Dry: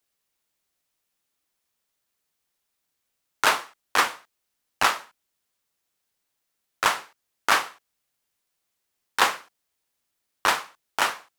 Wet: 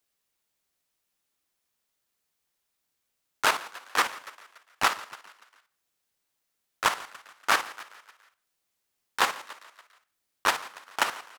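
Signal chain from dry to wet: frequency-shifting echo 0.143 s, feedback 54%, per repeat +44 Hz, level -16.5 dB; level quantiser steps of 10 dB

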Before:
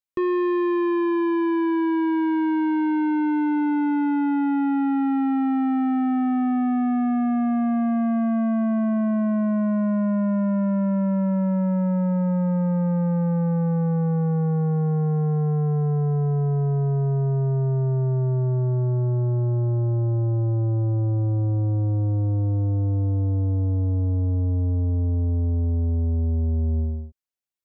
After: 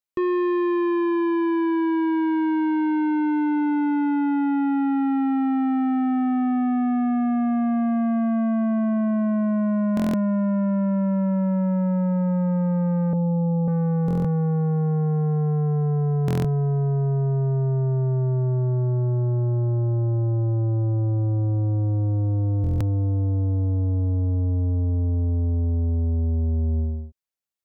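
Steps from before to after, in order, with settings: 13.13–13.68 steep low-pass 990 Hz 48 dB/oct; stuck buffer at 9.95/14.06/16.26/22.62, samples 1024, times 7

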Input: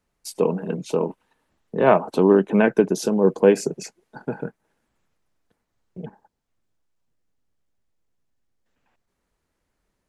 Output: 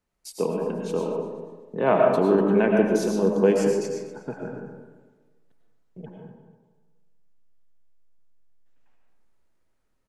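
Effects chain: feedback echo 0.244 s, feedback 28%, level -17 dB; digital reverb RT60 1.2 s, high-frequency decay 0.45×, pre-delay 65 ms, DRR 0 dB; gain -5.5 dB

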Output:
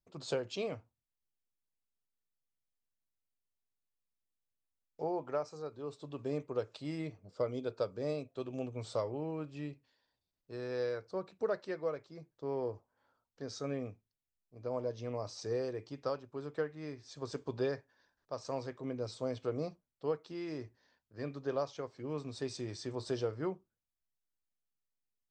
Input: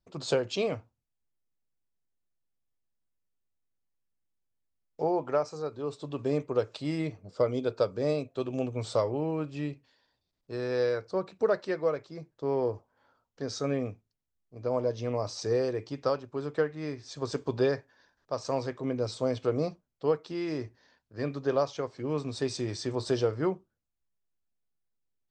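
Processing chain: gain -8 dB

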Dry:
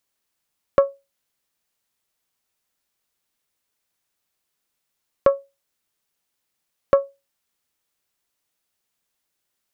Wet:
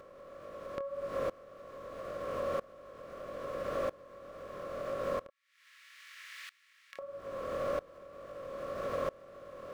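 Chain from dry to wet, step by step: per-bin compression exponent 0.2; 5.27–6.99 Chebyshev high-pass 1900 Hz, order 4; in parallel at -7.5 dB: sample gate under -35 dBFS; on the sum: chorus 1.8 Hz, delay 19 ms, depth 6.3 ms; compressor 12:1, threshold -35 dBFS, peak gain reduction 26 dB; dB-ramp tremolo swelling 0.77 Hz, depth 24 dB; gain +6.5 dB

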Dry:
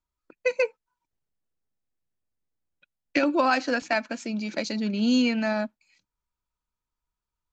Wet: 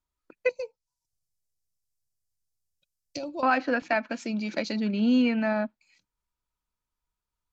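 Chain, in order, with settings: treble ducked by the level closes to 2500 Hz, closed at -22.5 dBFS; 0.49–3.43 EQ curve 130 Hz 0 dB, 240 Hz -15 dB, 730 Hz -8 dB, 1700 Hz -30 dB, 5100 Hz +7 dB

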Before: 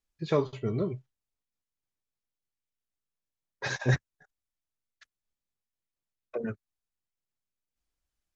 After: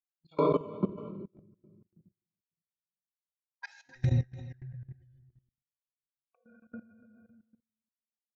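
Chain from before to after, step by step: per-bin expansion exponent 3; bell 1000 Hz +10 dB 0.2 oct; shoebox room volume 820 m³, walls mixed, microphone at 8.1 m; step gate "..xxx..x..x" 78 bpm -24 dB; 3.83–6.5 envelope flanger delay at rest 4.3 ms, full sweep at -14.5 dBFS; low shelf 83 Hz +7 dB; outdoor echo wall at 50 m, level -9 dB; gate with hold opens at -52 dBFS; level quantiser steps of 18 dB; mismatched tape noise reduction encoder only; gain -6 dB

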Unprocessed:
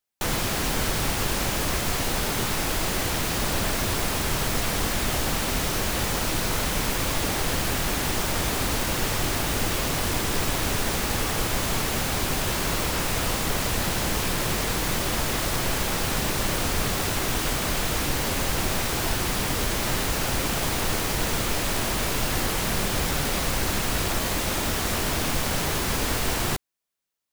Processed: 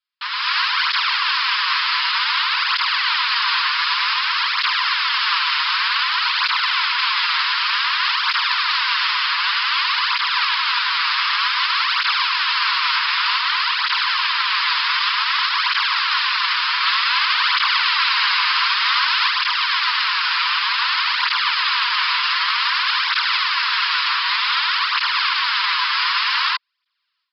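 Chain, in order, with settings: AGC gain up to 16.5 dB; Chebyshev high-pass 990 Hz, order 6; limiter -11 dBFS, peak gain reduction 7 dB; Chebyshev low-pass 5100 Hz, order 8; 16.79–19.28 flutter echo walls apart 11 m, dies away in 0.71 s; tape flanging out of phase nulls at 0.54 Hz, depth 7.3 ms; gain +7.5 dB

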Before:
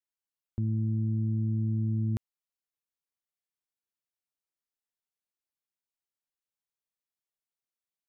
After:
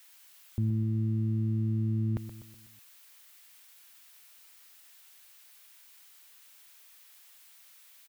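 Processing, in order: switching spikes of -37 dBFS; tone controls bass +1 dB, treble -14 dB; feedback echo 0.124 s, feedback 50%, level -11 dB

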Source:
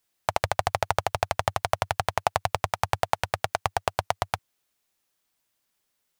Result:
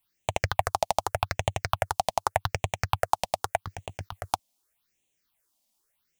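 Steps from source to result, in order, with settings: 3.65–4.34 negative-ratio compressor -29 dBFS, ratio -0.5; phaser stages 6, 0.84 Hz, lowest notch 100–1400 Hz; gain +2 dB

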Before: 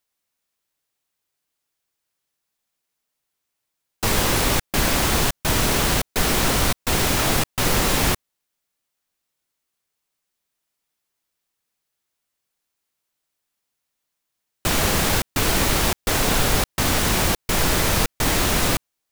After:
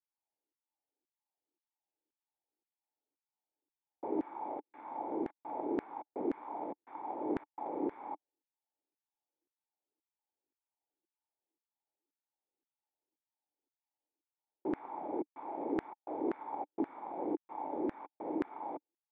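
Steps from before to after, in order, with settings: added harmonics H 3 -8 dB, 7 -17 dB, 8 -25 dB, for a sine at -5.5 dBFS; vocal tract filter u; LFO high-pass saw down 1.9 Hz 330–1700 Hz; gain +3 dB

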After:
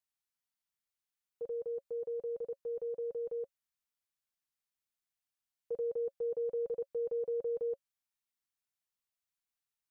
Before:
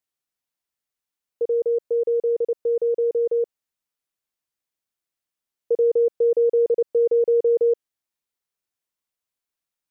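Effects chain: bell 400 Hz -13.5 dB 1 oct; notch 550 Hz, Q 12; gain -5.5 dB

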